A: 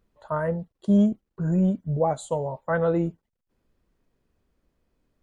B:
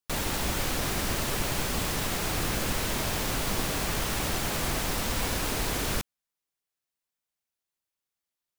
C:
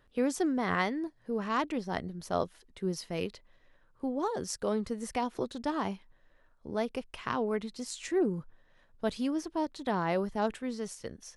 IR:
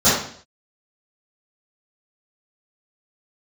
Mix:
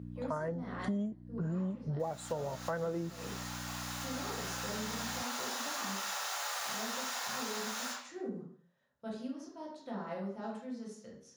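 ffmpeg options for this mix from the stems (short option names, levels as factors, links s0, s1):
-filter_complex "[0:a]aeval=exprs='val(0)+0.0126*(sin(2*PI*60*n/s)+sin(2*PI*2*60*n/s)/2+sin(2*PI*3*60*n/s)/3+sin(2*PI*4*60*n/s)/4+sin(2*PI*5*60*n/s)/5)':c=same,volume=1.06[s0];[1:a]highpass=f=780:w=0.5412,highpass=f=780:w=1.3066,dynaudnorm=f=430:g=13:m=3.16,adelay=1900,volume=0.15,asplit=2[s1][s2];[s2]volume=0.133[s3];[2:a]volume=0.126,asplit=3[s4][s5][s6];[s5]volume=0.133[s7];[s6]apad=whole_len=462543[s8];[s1][s8]sidechaincompress=threshold=0.00141:ratio=8:attack=16:release=1210[s9];[3:a]atrim=start_sample=2205[s10];[s3][s7]amix=inputs=2:normalize=0[s11];[s11][s10]afir=irnorm=-1:irlink=0[s12];[s0][s9][s4][s12]amix=inputs=4:normalize=0,highpass=120,acompressor=threshold=0.02:ratio=6"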